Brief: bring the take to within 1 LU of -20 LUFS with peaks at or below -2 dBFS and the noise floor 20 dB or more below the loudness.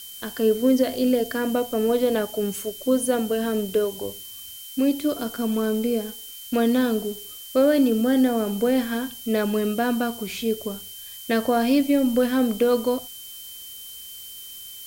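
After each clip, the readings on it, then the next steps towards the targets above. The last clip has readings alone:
steady tone 3.1 kHz; tone level -42 dBFS; noise floor -40 dBFS; noise floor target -43 dBFS; loudness -23.0 LUFS; peak level -9.5 dBFS; loudness target -20.0 LUFS
-> band-stop 3.1 kHz, Q 30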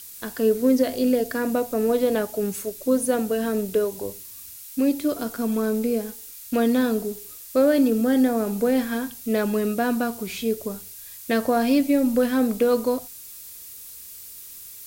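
steady tone not found; noise floor -41 dBFS; noise floor target -43 dBFS
-> noise print and reduce 6 dB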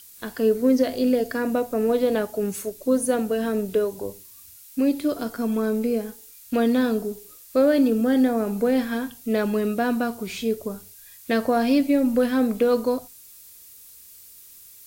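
noise floor -47 dBFS; loudness -23.0 LUFS; peak level -9.5 dBFS; loudness target -20.0 LUFS
-> trim +3 dB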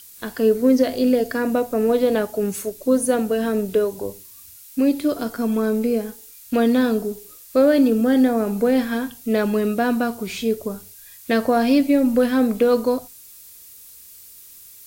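loudness -20.0 LUFS; peak level -6.5 dBFS; noise floor -44 dBFS

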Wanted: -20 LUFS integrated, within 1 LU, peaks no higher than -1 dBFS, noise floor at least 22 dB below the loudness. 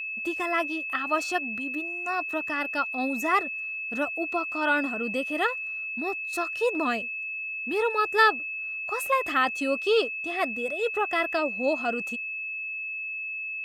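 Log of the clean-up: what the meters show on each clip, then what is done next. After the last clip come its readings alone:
steady tone 2.6 kHz; tone level -31 dBFS; loudness -27.0 LUFS; peak level -8.5 dBFS; loudness target -20.0 LUFS
-> band-stop 2.6 kHz, Q 30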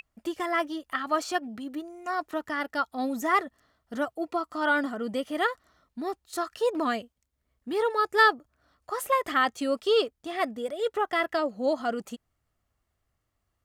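steady tone not found; loudness -28.5 LUFS; peak level -8.5 dBFS; loudness target -20.0 LUFS
-> trim +8.5 dB; peak limiter -1 dBFS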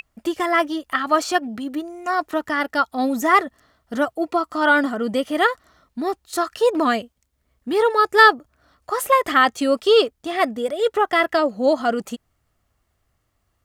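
loudness -20.0 LUFS; peak level -1.0 dBFS; noise floor -70 dBFS

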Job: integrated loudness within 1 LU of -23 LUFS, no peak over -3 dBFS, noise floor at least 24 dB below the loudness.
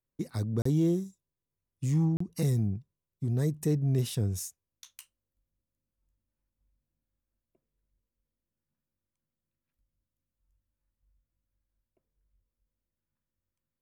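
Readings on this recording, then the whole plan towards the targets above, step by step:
dropouts 2; longest dropout 34 ms; loudness -30.0 LUFS; peak level -17.0 dBFS; loudness target -23.0 LUFS
-> interpolate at 0.62/2.17 s, 34 ms; trim +7 dB

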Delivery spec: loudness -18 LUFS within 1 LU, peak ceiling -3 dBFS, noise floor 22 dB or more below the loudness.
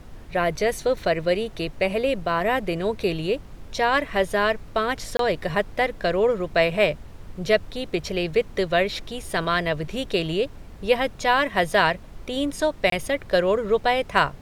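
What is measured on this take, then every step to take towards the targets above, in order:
dropouts 2; longest dropout 23 ms; noise floor -42 dBFS; noise floor target -46 dBFS; loudness -23.5 LUFS; peak level -4.0 dBFS; loudness target -18.0 LUFS
-> interpolate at 5.17/12.90 s, 23 ms; noise print and reduce 6 dB; trim +5.5 dB; peak limiter -3 dBFS

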